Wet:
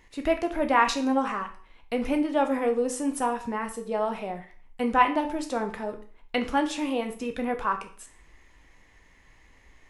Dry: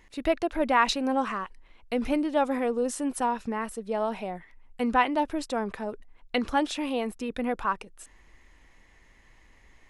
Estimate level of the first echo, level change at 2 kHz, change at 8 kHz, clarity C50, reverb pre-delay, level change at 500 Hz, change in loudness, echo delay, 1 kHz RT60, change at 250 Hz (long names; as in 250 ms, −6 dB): no echo audible, +1.0 dB, +1.0 dB, 12.0 dB, 9 ms, +1.0 dB, +1.0 dB, no echo audible, 0.45 s, +1.0 dB